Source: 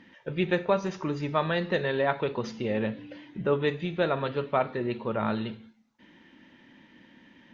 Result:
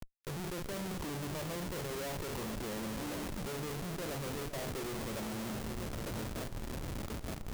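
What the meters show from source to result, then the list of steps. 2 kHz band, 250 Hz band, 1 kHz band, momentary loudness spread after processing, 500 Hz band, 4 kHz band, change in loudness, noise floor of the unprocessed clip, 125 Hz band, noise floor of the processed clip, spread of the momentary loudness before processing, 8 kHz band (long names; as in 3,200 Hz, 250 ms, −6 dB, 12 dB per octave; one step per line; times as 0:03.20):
−10.5 dB, −8.0 dB, −11.5 dB, 3 LU, −13.0 dB, −4.5 dB, −10.5 dB, −58 dBFS, −6.0 dB, −44 dBFS, 7 LU, can't be measured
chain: peak hold with a decay on every bin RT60 0.31 s
delay with a low-pass on its return 908 ms, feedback 66%, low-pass 3,500 Hz, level −22 dB
treble cut that deepens with the level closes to 620 Hz, closed at −22 dBFS
reversed playback
downward compressor 12 to 1, threshold −34 dBFS, peak gain reduction 13.5 dB
reversed playback
comparator with hysteresis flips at −44.5 dBFS
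high-shelf EQ 4,900 Hz +6.5 dB
on a send: echo with a time of its own for lows and highs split 1,500 Hz, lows 399 ms, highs 223 ms, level −12 dB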